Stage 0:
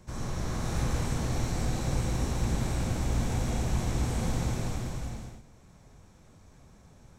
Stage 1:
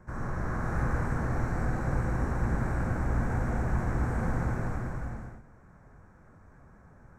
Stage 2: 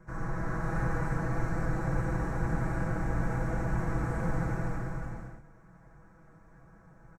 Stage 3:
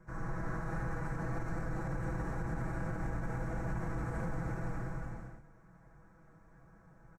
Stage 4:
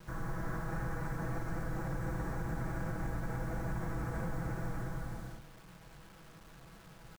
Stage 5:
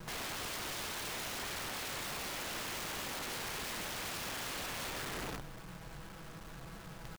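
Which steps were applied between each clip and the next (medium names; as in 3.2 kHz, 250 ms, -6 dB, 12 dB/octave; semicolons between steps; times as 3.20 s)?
resonant high shelf 2.3 kHz -13 dB, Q 3
comb 6.1 ms, depth 82%; trim -3 dB
peak limiter -24 dBFS, peak gain reduction 7 dB; trim -4 dB
in parallel at +2 dB: compression 16:1, threshold -43 dBFS, peak gain reduction 12 dB; on the sum: bit crusher 9-bit; trim -3 dB
rattle on loud lows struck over -38 dBFS, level -40 dBFS; integer overflow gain 42 dB; trim +6 dB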